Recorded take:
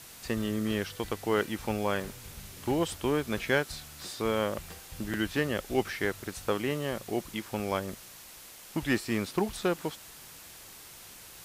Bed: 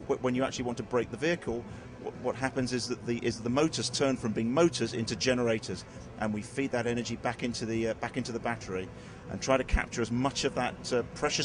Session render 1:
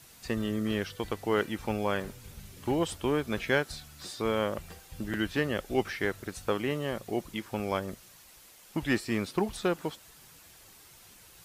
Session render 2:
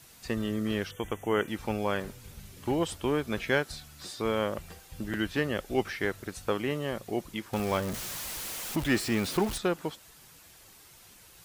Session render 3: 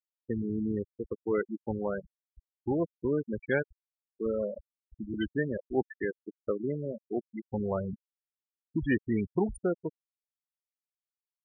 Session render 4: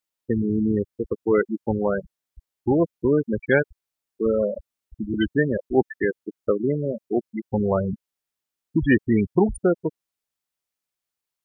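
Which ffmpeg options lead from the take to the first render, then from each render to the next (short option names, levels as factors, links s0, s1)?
-af "afftdn=nr=7:nf=-49"
-filter_complex "[0:a]asettb=1/sr,asplit=3[s0][s1][s2];[s0]atrim=end=0.914[s3];[s1]atrim=start=0.91:end=1.48,asetpts=PTS-STARTPTS,afade=t=in:d=0.004:c=qsin,afade=t=out:st=0.566:d=0.004:c=qsin,asuperstop=centerf=4500:order=20:qfactor=2[s4];[s2]atrim=start=1.476[s5];[s3][s4]acrossfade=d=0.004:c1=hsin:c2=qsin[s6];[s6][s5]acrossfade=d=0.004:c1=qsin:c2=hsin,asettb=1/sr,asplit=3[s7][s8][s9];[s7]atrim=end=7.534[s10];[s8]atrim=start=7.53:end=9.58,asetpts=PTS-STARTPTS,afade=t=in:d=0.004:c=qsin,afade=t=out:st=2.046:d=0.004:c=qsin,aeval=exprs='val(0)+0.5*0.0237*sgn(val(0))':c=same[s11];[s9]atrim=start=9.576[s12];[s10][s11]acrossfade=d=0.004:c1=hsin:c2=qsin[s13];[s13][s12]acrossfade=d=0.004:c1=qsin:c2=hsin"
-af "afftfilt=real='re*gte(hypot(re,im),0.1)':imag='im*gte(hypot(re,im),0.1)':win_size=1024:overlap=0.75,equalizer=f=1100:t=o:w=0.53:g=-9"
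-af "volume=2.99"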